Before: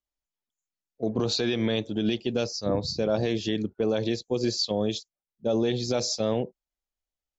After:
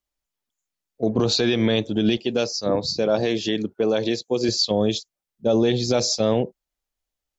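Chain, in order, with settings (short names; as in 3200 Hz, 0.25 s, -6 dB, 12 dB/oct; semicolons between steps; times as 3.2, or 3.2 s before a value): 2.17–4.49 HPF 240 Hz 6 dB/oct; gain +6 dB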